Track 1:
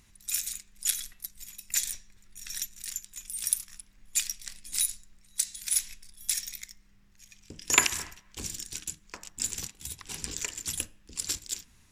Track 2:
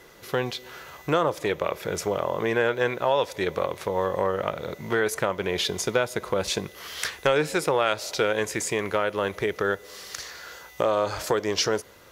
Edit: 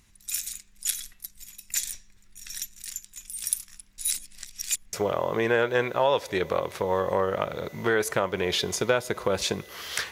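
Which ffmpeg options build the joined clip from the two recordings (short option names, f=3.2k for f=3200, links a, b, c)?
-filter_complex "[0:a]apad=whole_dur=10.11,atrim=end=10.11,asplit=2[a][b];[a]atrim=end=3.982[c];[b]atrim=start=3.978:end=4.932,asetpts=PTS-STARTPTS,areverse[d];[1:a]atrim=start=1.988:end=7.17[e];[c][d]acrossfade=d=0.004:c1=hsin:c2=hsin[f];[f][e]acrossfade=d=0.004:c1=hsin:c2=hsin"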